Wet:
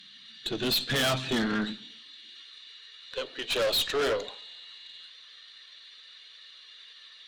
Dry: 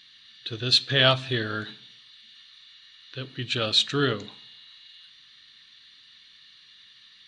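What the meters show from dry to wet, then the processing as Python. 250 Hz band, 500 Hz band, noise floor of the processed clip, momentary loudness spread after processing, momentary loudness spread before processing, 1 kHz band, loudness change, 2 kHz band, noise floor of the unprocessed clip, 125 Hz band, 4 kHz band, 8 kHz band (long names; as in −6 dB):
+0.5 dB, −0.5 dB, −52 dBFS, 22 LU, 19 LU, −3.0 dB, −5.0 dB, −3.5 dB, −54 dBFS, −8.5 dB, −5.5 dB, +2.0 dB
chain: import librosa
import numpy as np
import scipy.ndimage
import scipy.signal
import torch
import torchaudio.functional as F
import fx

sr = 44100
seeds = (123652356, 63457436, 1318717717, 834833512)

y = fx.spec_quant(x, sr, step_db=15)
y = fx.filter_sweep_highpass(y, sr, from_hz=200.0, to_hz=550.0, start_s=1.59, end_s=3.14, q=3.5)
y = fx.tube_stage(y, sr, drive_db=28.0, bias=0.45)
y = y * librosa.db_to_amplitude(4.5)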